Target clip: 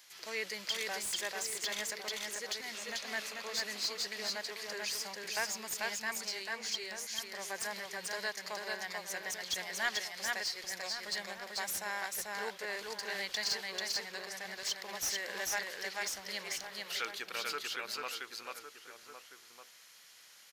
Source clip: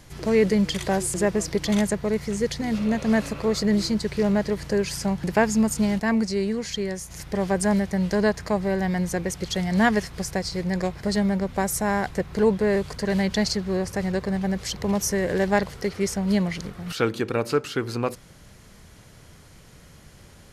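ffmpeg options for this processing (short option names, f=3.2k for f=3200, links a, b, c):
-filter_complex "[0:a]aderivative,asplit=2[a][b];[b]aecho=0:1:441:0.708[c];[a][c]amix=inputs=2:normalize=0,asplit=2[d][e];[e]highpass=f=720:p=1,volume=16dB,asoftclip=type=tanh:threshold=-14dB[f];[d][f]amix=inputs=2:normalize=0,lowpass=f=6.4k:p=1,volume=-6dB,equalizer=f=9.3k:w=1:g=-10.5,asplit=2[g][h];[h]adelay=1108,volume=-9dB,highshelf=f=4k:g=-24.9[i];[g][i]amix=inputs=2:normalize=0,volume=-5dB"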